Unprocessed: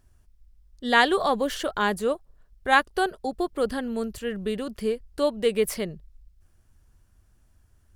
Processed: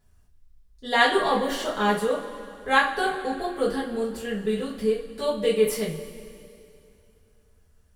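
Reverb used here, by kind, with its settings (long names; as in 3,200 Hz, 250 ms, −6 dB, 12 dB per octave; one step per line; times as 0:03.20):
coupled-rooms reverb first 0.31 s, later 2.7 s, from −18 dB, DRR −7 dB
level −7 dB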